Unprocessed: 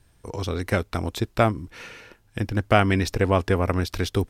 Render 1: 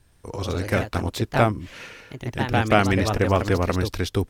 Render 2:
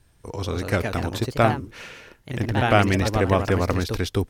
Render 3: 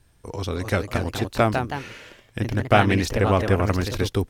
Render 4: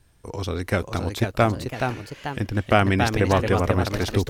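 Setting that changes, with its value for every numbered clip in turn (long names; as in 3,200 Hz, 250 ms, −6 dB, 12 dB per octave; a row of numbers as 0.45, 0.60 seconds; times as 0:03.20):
delay with pitch and tempo change per echo, delay time: 116, 196, 305, 575 milliseconds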